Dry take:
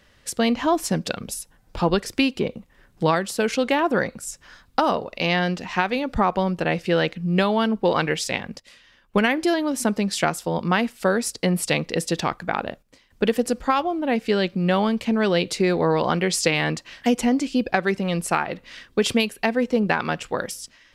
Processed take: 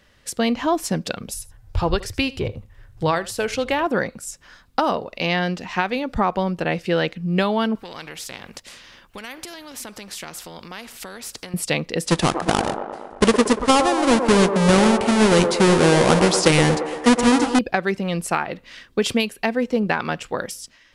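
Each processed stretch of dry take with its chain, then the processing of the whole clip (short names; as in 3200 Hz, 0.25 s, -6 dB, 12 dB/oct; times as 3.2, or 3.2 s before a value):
1.34–3.87 resonant low shelf 140 Hz +11 dB, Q 3 + echo 79 ms -19 dB
7.75–11.54 compressor 2:1, threshold -36 dBFS + spectral compressor 2:1
12.06–17.59 half-waves squared off + brick-wall FIR low-pass 11000 Hz + band-limited delay 0.116 s, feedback 64%, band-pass 650 Hz, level -5 dB
whole clip: dry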